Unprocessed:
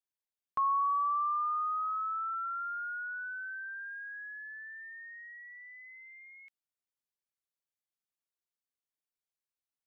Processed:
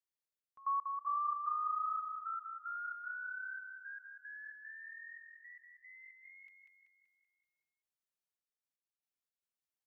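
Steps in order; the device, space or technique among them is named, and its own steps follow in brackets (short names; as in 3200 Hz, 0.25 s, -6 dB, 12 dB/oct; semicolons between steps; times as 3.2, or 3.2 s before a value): trance gate with a delay (step gate "xxx..x..xx.x" 113 bpm -24 dB; feedback echo 0.191 s, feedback 53%, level -5.5 dB); gain -4.5 dB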